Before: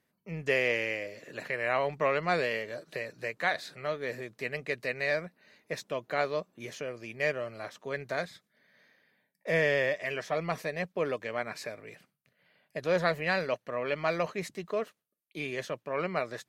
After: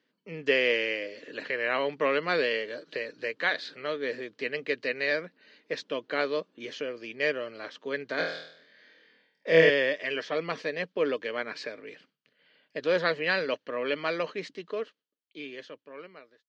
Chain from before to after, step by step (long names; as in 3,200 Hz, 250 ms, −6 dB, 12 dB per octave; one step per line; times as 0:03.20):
fade-out on the ending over 2.67 s
loudspeaker in its box 220–5,700 Hz, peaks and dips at 280 Hz +9 dB, 460 Hz +6 dB, 710 Hz −6 dB, 1,600 Hz +4 dB, 3,100 Hz +9 dB, 4,500 Hz +5 dB
0:08.16–0:09.70: flutter between parallel walls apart 4.2 metres, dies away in 0.63 s